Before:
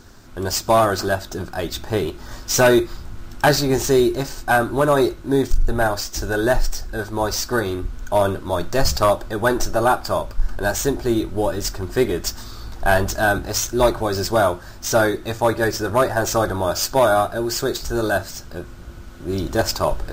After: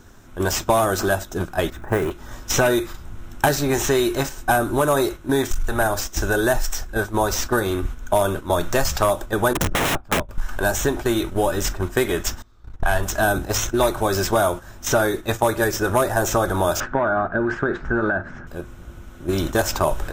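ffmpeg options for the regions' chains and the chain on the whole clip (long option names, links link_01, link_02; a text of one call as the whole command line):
ffmpeg -i in.wav -filter_complex "[0:a]asettb=1/sr,asplit=3[link_01][link_02][link_03];[link_01]atrim=end=1.704[link_04];[link_02]atrim=start=1.7:end=2.11,asetpts=PTS-STARTPTS,afade=type=in:duration=0.004:curve=qsin,afade=type=out:start_time=0.406:duration=0.004:curve=qsin,highshelf=frequency=2500:width_type=q:width=1.5:gain=-13.5,acrusher=bits=7:mode=log:mix=0:aa=0.000001[link_05];[link_03]atrim=start=2.106[link_06];[link_04][link_05]acrossfade=duration=0.004:curve1=hsin:curve2=qsin[link_07];[link_07][link_06]acrossfade=duration=0.004:curve1=qsin:curve2=hsin,asettb=1/sr,asplit=3[link_08][link_09][link_10];[link_08]atrim=end=9.534[link_11];[link_09]atrim=start=9.53:end=10.29,asetpts=PTS-STARTPTS,afade=type=in:duration=0.004:curve=qsin,afade=type=out:start_time=0.756:duration=0.004:curve=qsin,agate=range=-16dB:threshold=-22dB:ratio=16:release=100:detection=peak,bass=frequency=250:gain=8,treble=frequency=4000:gain=-12,aeval=exprs='(mod(5.96*val(0)+1,2)-1)/5.96':channel_layout=same[link_12];[link_10]atrim=start=10.286[link_13];[link_11][link_12]acrossfade=duration=0.004:curve1=hsin:curve2=qsin[link_14];[link_14][link_13]acrossfade=duration=0.004:curve1=qsin:curve2=hsin,asettb=1/sr,asplit=3[link_15][link_16][link_17];[link_15]atrim=end=12.424[link_18];[link_16]atrim=start=12.42:end=13.03,asetpts=PTS-STARTPTS,afade=type=in:duration=0.004:curve=qsin,afade=type=out:start_time=0.606:duration=0.004:curve=qsin,agate=range=-19dB:threshold=-30dB:ratio=16:release=100:detection=peak,lowpass=frequency=3500:poles=1,asubboost=boost=10:cutoff=110[link_19];[link_17]atrim=start=13.026[link_20];[link_18][link_19]acrossfade=duration=0.004:curve1=hsin:curve2=qsin[link_21];[link_21][link_20]acrossfade=duration=0.004:curve1=qsin:curve2=hsin,asettb=1/sr,asplit=3[link_22][link_23][link_24];[link_22]atrim=end=16.804[link_25];[link_23]atrim=start=16.8:end=18.47,asetpts=PTS-STARTPTS,afade=type=in:duration=0.004:curve=qsin,afade=type=out:start_time=1.666:duration=0.004:curve=qsin,lowpass=frequency=1600:width_type=q:width=3.8,acompressor=threshold=-25dB:ratio=3:attack=3.2:release=140:knee=1:detection=peak,equalizer=frequency=210:width_type=o:width=1.5:gain=8.5[link_26];[link_24]atrim=start=18.466[link_27];[link_25][link_26]acrossfade=duration=0.004:curve1=hsin:curve2=qsin[link_28];[link_28][link_27]acrossfade=duration=0.004:curve1=qsin:curve2=hsin,agate=range=-9dB:threshold=-26dB:ratio=16:detection=peak,equalizer=frequency=4600:width_type=o:width=0.29:gain=-12.5,acrossover=split=780|4200[link_29][link_30][link_31];[link_29]acompressor=threshold=-28dB:ratio=4[link_32];[link_30]acompressor=threshold=-31dB:ratio=4[link_33];[link_31]acompressor=threshold=-35dB:ratio=4[link_34];[link_32][link_33][link_34]amix=inputs=3:normalize=0,volume=7.5dB" out.wav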